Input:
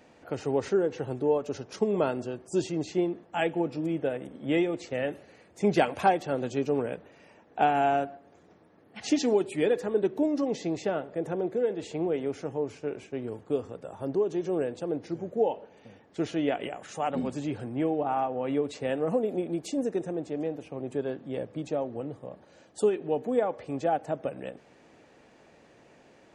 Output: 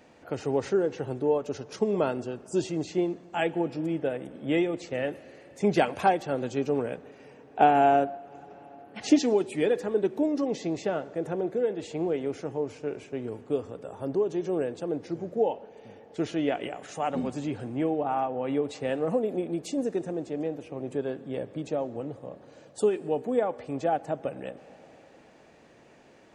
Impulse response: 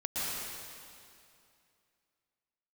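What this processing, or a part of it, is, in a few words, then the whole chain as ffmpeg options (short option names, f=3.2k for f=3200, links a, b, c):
compressed reverb return: -filter_complex "[0:a]asplit=2[a][b];[1:a]atrim=start_sample=2205[c];[b][c]afir=irnorm=-1:irlink=0,acompressor=threshold=-29dB:ratio=6,volume=-18.5dB[d];[a][d]amix=inputs=2:normalize=0,asettb=1/sr,asplit=3[e][f][g];[e]atrim=end=7.604[h];[f]atrim=start=7.6:end=9.2,asetpts=PTS-STARTPTS,afade=t=in:d=0.004:c=qsin,afade=t=out:st=1.596:d=0.004:c=qsin,equalizer=f=410:w=0.55:g=5.5[i];[g]atrim=start=9.196[j];[h][i]acrossfade=d=0.004:c1=hsin:c2=qsin[k];[k][j]acrossfade=d=0.004:c1=qsin:c2=hsin"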